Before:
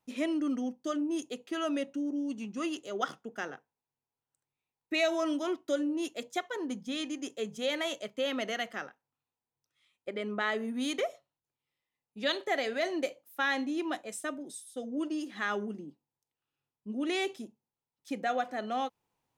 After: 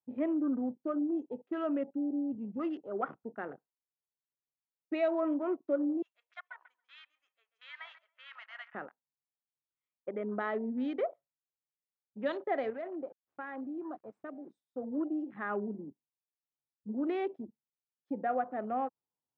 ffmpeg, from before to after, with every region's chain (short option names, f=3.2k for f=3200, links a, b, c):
-filter_complex "[0:a]asettb=1/sr,asplit=3[a][b][c];[a]atrim=end=6.024[d];[b]atrim=start=6.02:end=8.75,asetpts=PTS-STARTPTS,afade=t=in:d=0.004:c=qsin,afade=t=out:st=2.726:d=0.004:c=qsin,highpass=f=1.2k:w=0.5412,highpass=f=1.2k:w=1.3066,asplit=2[e][f];[f]adelay=138,lowpass=f=3.3k:p=1,volume=-11dB,asplit=2[g][h];[h]adelay=138,lowpass=f=3.3k:p=1,volume=0.37,asplit=2[i][j];[j]adelay=138,lowpass=f=3.3k:p=1,volume=0.37,asplit=2[k][l];[l]adelay=138,lowpass=f=3.3k:p=1,volume=0.37[m];[e][g][i][k][m]amix=inputs=5:normalize=0,atrim=end_sample=120393[n];[c]atrim=start=8.746[o];[d][n]acrossfade=d=0.004:c1=hsin:c2=qsin[p];[p][o]acrossfade=d=0.004:c1=qsin:c2=hsin,asettb=1/sr,asplit=3[q][r][s];[q]atrim=end=12.704[t];[r]atrim=start=12.7:end=14.52,asetpts=PTS-STARTPTS,afade=t=in:d=0.004:c=qsin,afade=t=out:st=1.816:d=0.004:c=qsin,acompressor=threshold=-48dB:ratio=1.5:attack=3.2:release=140:knee=1:detection=peak,aeval=exprs='val(0)*gte(abs(val(0)),0.00316)':c=same[u];[s]atrim=start=14.516[v];[t][u]acrossfade=d=0.004:c1=hsin:c2=qsin[w];[w][v]acrossfade=d=0.004:c1=qsin:c2=hsin,highpass=95,afwtdn=0.00562,lowpass=1.2k"